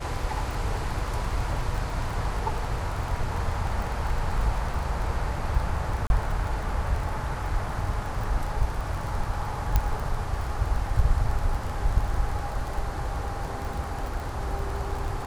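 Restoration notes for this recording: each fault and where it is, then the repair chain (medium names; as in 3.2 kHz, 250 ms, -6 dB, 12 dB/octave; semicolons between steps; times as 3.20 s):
crackle 25 per s -30 dBFS
6.07–6.10 s: dropout 31 ms
9.76 s: pop -9 dBFS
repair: de-click; interpolate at 6.07 s, 31 ms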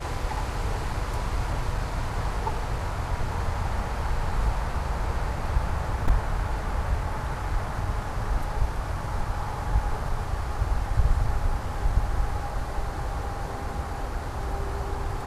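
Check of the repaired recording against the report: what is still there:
nothing left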